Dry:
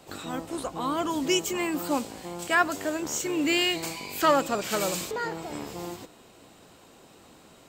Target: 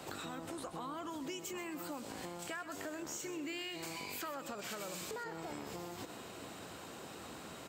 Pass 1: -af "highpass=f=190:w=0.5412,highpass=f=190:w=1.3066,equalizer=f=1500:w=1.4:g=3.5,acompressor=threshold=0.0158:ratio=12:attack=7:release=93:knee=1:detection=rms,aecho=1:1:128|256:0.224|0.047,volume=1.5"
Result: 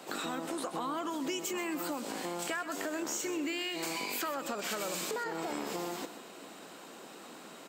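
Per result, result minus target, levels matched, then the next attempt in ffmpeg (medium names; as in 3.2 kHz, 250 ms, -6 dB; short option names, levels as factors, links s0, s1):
125 Hz band -7.5 dB; compression: peak gain reduction -7 dB
-af "highpass=f=58:w=0.5412,highpass=f=58:w=1.3066,equalizer=f=1500:w=1.4:g=3.5,acompressor=threshold=0.0158:ratio=12:attack=7:release=93:knee=1:detection=rms,aecho=1:1:128|256:0.224|0.047,volume=1.5"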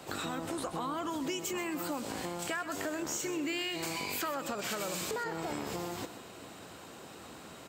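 compression: peak gain reduction -7.5 dB
-af "highpass=f=58:w=0.5412,highpass=f=58:w=1.3066,equalizer=f=1500:w=1.4:g=3.5,acompressor=threshold=0.00631:ratio=12:attack=7:release=93:knee=1:detection=rms,aecho=1:1:128|256:0.224|0.047,volume=1.5"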